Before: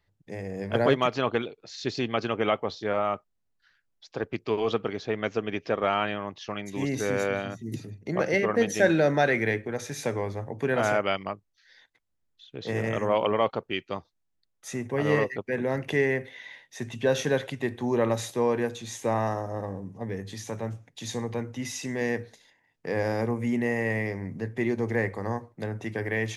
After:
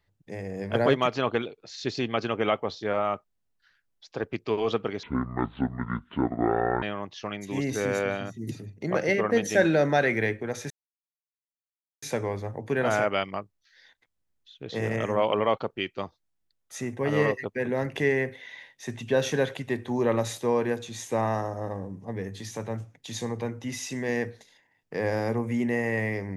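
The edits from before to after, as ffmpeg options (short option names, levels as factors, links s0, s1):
-filter_complex "[0:a]asplit=4[s0][s1][s2][s3];[s0]atrim=end=5.034[s4];[s1]atrim=start=5.03:end=6.07,asetpts=PTS-STARTPTS,asetrate=25578,aresample=44100[s5];[s2]atrim=start=6.066:end=9.95,asetpts=PTS-STARTPTS,afade=t=out:st=3.88:d=0.004:c=hsin,apad=pad_dur=1.32[s6];[s3]atrim=start=9.95,asetpts=PTS-STARTPTS,afade=t=in:d=0.004:c=hsin[s7];[s4][s5]acrossfade=d=0.004:c1=hsin:c2=hsin[s8];[s6][s7]concat=n=2:v=0:a=1[s9];[s8][s9]acrossfade=d=0.004:c1=hsin:c2=hsin"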